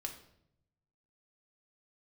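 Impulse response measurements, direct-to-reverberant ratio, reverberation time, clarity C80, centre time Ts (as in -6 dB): 2.5 dB, 0.75 s, 12.5 dB, 16 ms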